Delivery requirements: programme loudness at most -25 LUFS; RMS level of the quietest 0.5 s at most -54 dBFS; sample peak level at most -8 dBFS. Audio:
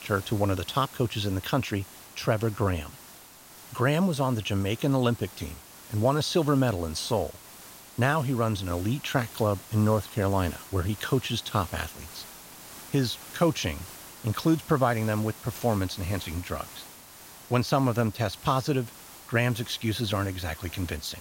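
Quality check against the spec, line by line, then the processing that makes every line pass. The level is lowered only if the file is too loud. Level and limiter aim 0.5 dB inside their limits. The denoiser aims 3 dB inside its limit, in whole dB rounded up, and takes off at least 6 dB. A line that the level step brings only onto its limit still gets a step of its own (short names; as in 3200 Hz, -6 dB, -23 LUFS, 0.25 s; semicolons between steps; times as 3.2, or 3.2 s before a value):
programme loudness -28.0 LUFS: OK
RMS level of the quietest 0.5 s -49 dBFS: fail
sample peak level -10.5 dBFS: OK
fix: denoiser 8 dB, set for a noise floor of -49 dBFS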